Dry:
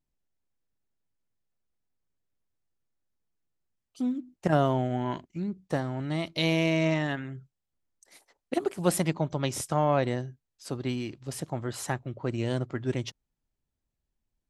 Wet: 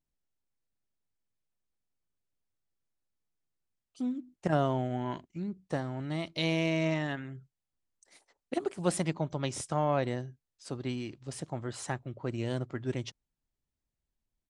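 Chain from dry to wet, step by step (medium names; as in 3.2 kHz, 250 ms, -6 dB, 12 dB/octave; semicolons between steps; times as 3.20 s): resampled via 22.05 kHz; trim -4 dB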